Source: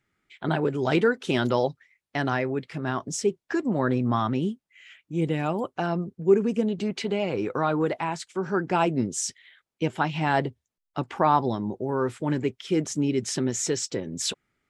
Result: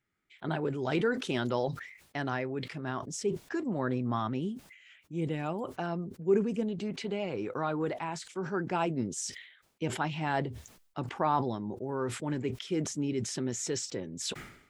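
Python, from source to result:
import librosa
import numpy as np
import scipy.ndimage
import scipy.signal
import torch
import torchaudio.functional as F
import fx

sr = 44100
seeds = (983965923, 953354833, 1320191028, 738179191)

y = fx.sustainer(x, sr, db_per_s=83.0)
y = y * 10.0 ** (-7.5 / 20.0)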